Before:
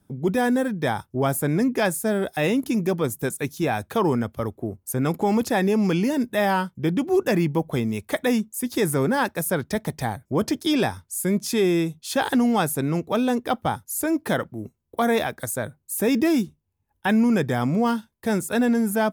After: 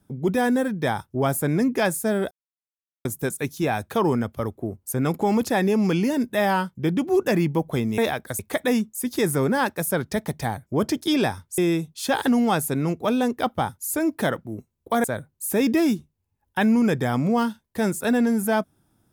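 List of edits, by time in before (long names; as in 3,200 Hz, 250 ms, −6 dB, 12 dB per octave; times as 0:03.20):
0:02.31–0:03.05: silence
0:11.17–0:11.65: remove
0:15.11–0:15.52: move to 0:07.98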